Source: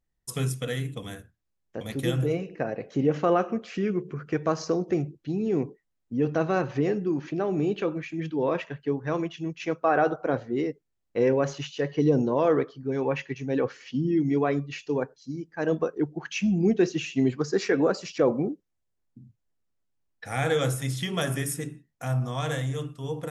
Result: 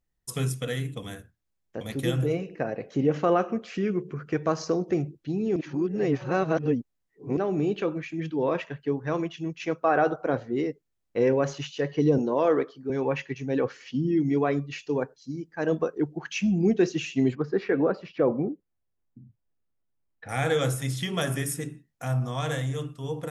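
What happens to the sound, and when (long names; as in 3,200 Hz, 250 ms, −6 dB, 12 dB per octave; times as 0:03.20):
0:05.56–0:07.37: reverse
0:12.18–0:12.90: high-pass filter 210 Hz
0:17.35–0:20.29: high-frequency loss of the air 390 metres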